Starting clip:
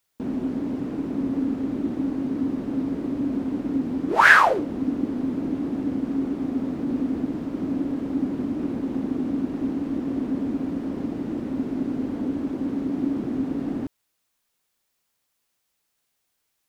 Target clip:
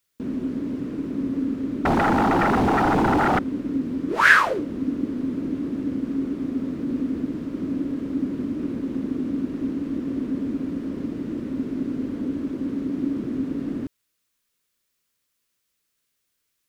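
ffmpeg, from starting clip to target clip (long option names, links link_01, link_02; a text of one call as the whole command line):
ffmpeg -i in.wav -filter_complex "[0:a]equalizer=frequency=780:width_type=o:width=0.57:gain=-11,asettb=1/sr,asplit=3[link_01][link_02][link_03];[link_01]atrim=end=1.854[link_04];[link_02]atrim=start=1.85:end=3.39,asetpts=PTS-STARTPTS,afade=type=in:duration=0.004:curve=qsin,afade=type=out:start_time=1.536:duration=0.004:curve=qsin,aeval=exprs='0.158*sin(PI/2*5.62*val(0)/0.158)':channel_layout=same[link_05];[link_03]atrim=start=3.386[link_06];[link_04][link_05]acrossfade=duration=0.004:curve1=hsin:curve2=qsin[link_07];[link_07][link_06]acrossfade=duration=0.004:curve1=qsin:curve2=hsin" out.wav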